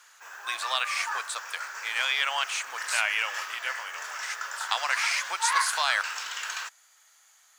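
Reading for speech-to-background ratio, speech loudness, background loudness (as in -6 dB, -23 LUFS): 4.5 dB, -29.0 LUFS, -33.5 LUFS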